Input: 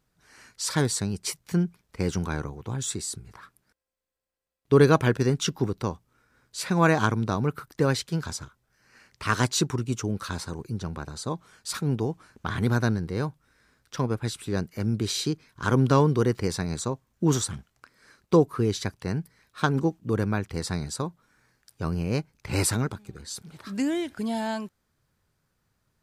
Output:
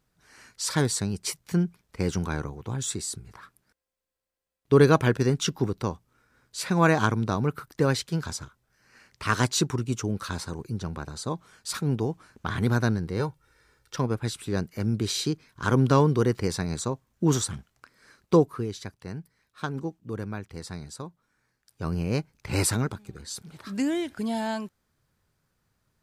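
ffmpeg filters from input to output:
-filter_complex "[0:a]asettb=1/sr,asplit=3[a][b][c];[a]atrim=end=13.194[d];[b]atrim=start=13.19:end=13.96,asetpts=PTS-STARTPTS,afade=t=in:d=0.004:c=qsin,afade=t=out:st=0.766:d=0.004:c=qsin,aecho=1:1:2.2:0.65,atrim=end_sample=33957[e];[c]atrim=start=13.956[f];[d][e]acrossfade=d=0.004:c1=hsin:c2=qsin[g];[g][f]acrossfade=d=0.004:c1=qsin:c2=hsin,asplit=3[h][i][j];[h]atrim=end=18.68,asetpts=PTS-STARTPTS,afade=t=out:st=18.37:d=0.31:silence=0.398107[k];[i]atrim=start=18.68:end=21.63,asetpts=PTS-STARTPTS,volume=-8dB[l];[j]atrim=start=21.63,asetpts=PTS-STARTPTS,afade=t=in:d=0.31:silence=0.398107[m];[k][l][m]concat=n=3:v=0:a=1"

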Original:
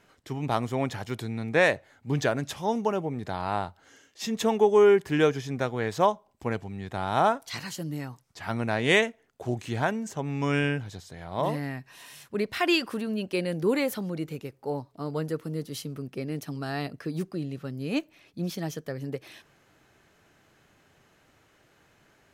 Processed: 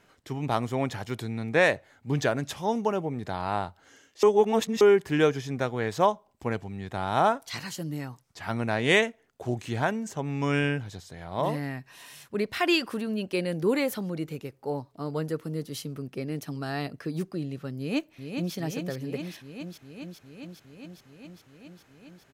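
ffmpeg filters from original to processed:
-filter_complex "[0:a]asplit=2[a][b];[b]afade=t=in:st=17.77:d=0.01,afade=t=out:st=18.54:d=0.01,aecho=0:1:410|820|1230|1640|2050|2460|2870|3280|3690|4100|4510|4920:0.501187|0.40095|0.32076|0.256608|0.205286|0.164229|0.131383|0.105107|0.0840853|0.0672682|0.0538146|0.0430517[c];[a][c]amix=inputs=2:normalize=0,asplit=3[d][e][f];[d]atrim=end=4.232[g];[e]atrim=start=4.228:end=4.812,asetpts=PTS-STARTPTS,areverse[h];[f]atrim=start=4.808[i];[g][h]acrossfade=d=0.004:c1=hsin:c2=hsin[j];[j][i]acrossfade=d=0.004:c1=hsin:c2=hsin"

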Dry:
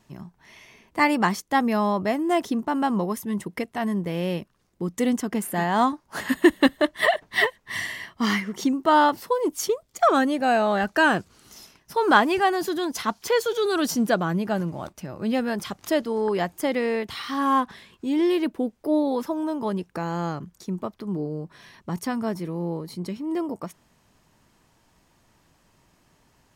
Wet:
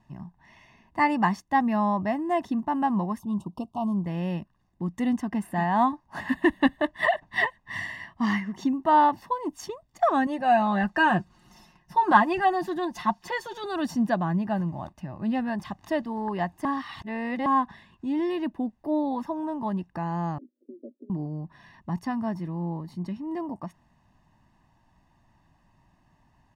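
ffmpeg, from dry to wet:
-filter_complex "[0:a]asettb=1/sr,asplit=3[a][b][c];[a]atrim=end=3.194[d];[b]atrim=start=3.19:end=4.06,asetpts=PTS-STARTPTS,afade=t=in:d=0.004:c=qsin,afade=t=out:st=0.866:d=0.004:c=qsin,asuperstop=centerf=1900:order=8:qfactor=1.1[e];[c]atrim=start=4.056[f];[d][e]acrossfade=d=0.004:c1=hsin:c2=qsin[g];[g][f]acrossfade=d=0.004:c1=qsin:c2=hsin,asettb=1/sr,asplit=3[h][i][j];[h]atrim=end=10.264[k];[i]atrim=start=10.26:end=13.64,asetpts=PTS-STARTPTS,afade=t=in:d=0.004:c=qsin,afade=t=out:st=3.376:d=0.004:c=qsin,aecho=1:1:5.6:0.65,atrim=end_sample=149058[l];[j]atrim=start=13.636[m];[k][l]acrossfade=d=0.004:c1=hsin:c2=qsin[n];[n][m]acrossfade=d=0.004:c1=qsin:c2=hsin,asettb=1/sr,asplit=3[o][p][q];[o]atrim=end=20.384[r];[p]atrim=start=20.38:end=21.1,asetpts=PTS-STARTPTS,afade=t=in:d=0.004:c=qsin,afade=t=out:st=0.716:d=0.004:c=qsin,asuperpass=centerf=370:order=20:qfactor=1.1[s];[q]atrim=start=21.096[t];[r][s]acrossfade=d=0.004:c1=hsin:c2=qsin[u];[u][t]acrossfade=d=0.004:c1=qsin:c2=hsin,asplit=3[v][w][x];[v]atrim=end=16.652[y];[w]atrim=start=16.648:end=17.462,asetpts=PTS-STARTPTS,areverse[z];[x]atrim=start=17.458[aa];[y][z]acrossfade=d=0.004:c1=hsin:c2=hsin[ab];[ab][aa]acrossfade=d=0.004:c1=hsin:c2=hsin,lowpass=f=1.5k:p=1,aecho=1:1:1.1:0.73,volume=-3dB"

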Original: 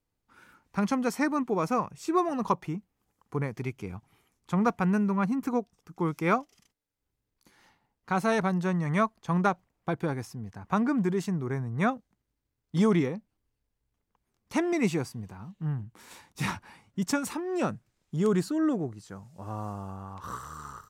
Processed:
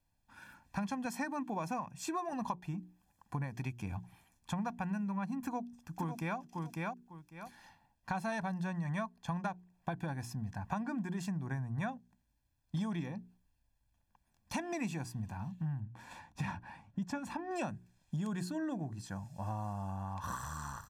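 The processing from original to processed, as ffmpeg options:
-filter_complex "[0:a]asettb=1/sr,asplit=3[a][b][c];[a]atrim=end=1.054[d];[b]atrim=start=1.05:end=2.33,asetpts=PTS-STARTPTS,afade=t=in:d=0.004:c=qsin,afade=t=out:st=1.276:d=0.004:c=qsin,highpass=110[e];[c]atrim=start=2.326[f];[d][e]acrossfade=d=0.004:c1=hsin:c2=qsin[g];[g][f]acrossfade=d=0.004:c1=qsin:c2=hsin,asplit=2[h][i];[i]afade=t=in:st=5.43:d=0.01,afade=t=out:st=6.38:d=0.01,aecho=0:1:550|1100:0.421697|0.0632545[j];[h][j]amix=inputs=2:normalize=0,asettb=1/sr,asplit=3[k][l][m];[k]atrim=end=15.804[n];[l]atrim=start=15.8:end=17.51,asetpts=PTS-STARTPTS,afade=t=in:d=0.004:c=qsin,afade=t=out:st=1.706:d=0.004:c=qsin,lowpass=f=1.7k:p=1[o];[m]atrim=start=17.506[p];[n][o]acrossfade=d=0.004:c1=hsin:c2=qsin[q];[q][p]acrossfade=d=0.004:c1=qsin:c2=hsin,bandreject=f=60:t=h:w=6,bandreject=f=120:t=h:w=6,bandreject=f=180:t=h:w=6,bandreject=f=240:t=h:w=6,bandreject=f=300:t=h:w=6,bandreject=f=360:t=h:w=6,bandreject=f=420:t=h:w=6,aecho=1:1:1.2:0.78,acompressor=threshold=-35dB:ratio=6"

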